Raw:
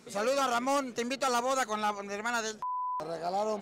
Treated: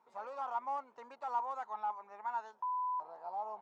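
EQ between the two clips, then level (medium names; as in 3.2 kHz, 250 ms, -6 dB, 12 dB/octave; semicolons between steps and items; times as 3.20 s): band-pass filter 930 Hz, Q 9.3; +2.5 dB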